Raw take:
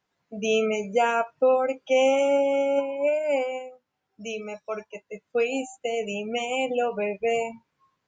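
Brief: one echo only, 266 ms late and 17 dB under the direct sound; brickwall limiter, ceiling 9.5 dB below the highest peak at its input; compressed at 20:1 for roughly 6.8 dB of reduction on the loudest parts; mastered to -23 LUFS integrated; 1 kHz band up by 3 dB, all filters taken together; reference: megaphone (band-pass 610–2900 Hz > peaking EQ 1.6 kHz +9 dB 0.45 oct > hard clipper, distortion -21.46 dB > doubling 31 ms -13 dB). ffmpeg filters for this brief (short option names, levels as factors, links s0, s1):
-filter_complex "[0:a]equalizer=f=1000:t=o:g=5,acompressor=threshold=0.0891:ratio=20,alimiter=limit=0.0668:level=0:latency=1,highpass=610,lowpass=2900,equalizer=f=1600:t=o:w=0.45:g=9,aecho=1:1:266:0.141,asoftclip=type=hard:threshold=0.0447,asplit=2[s0][s1];[s1]adelay=31,volume=0.224[s2];[s0][s2]amix=inputs=2:normalize=0,volume=3.76"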